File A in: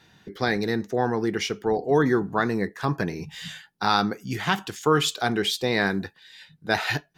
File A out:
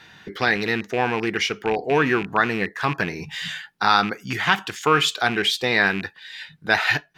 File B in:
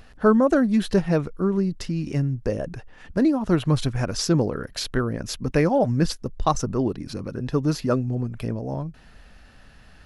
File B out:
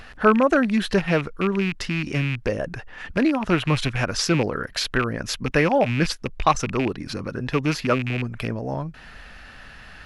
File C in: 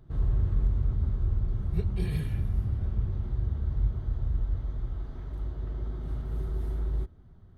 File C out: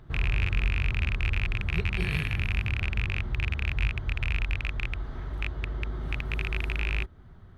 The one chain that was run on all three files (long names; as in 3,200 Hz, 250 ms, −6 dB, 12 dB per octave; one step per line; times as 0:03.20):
loose part that buzzes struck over −27 dBFS, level −25 dBFS
parametric band 1,900 Hz +9.5 dB 2.5 octaves
in parallel at 0 dB: downward compressor, threshold −34 dBFS
on the sum: level −3 dB